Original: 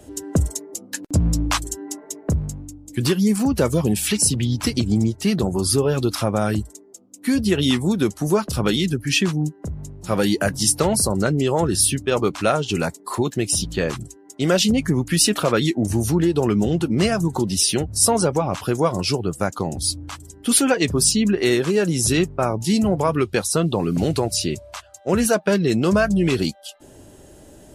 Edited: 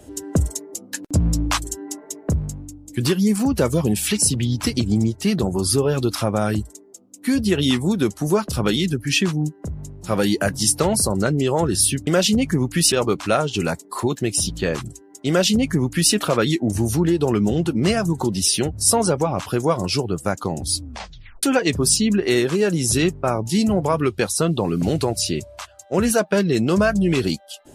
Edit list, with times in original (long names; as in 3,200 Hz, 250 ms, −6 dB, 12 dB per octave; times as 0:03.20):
0:14.43–0:15.28: duplicate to 0:12.07
0:19.97: tape stop 0.61 s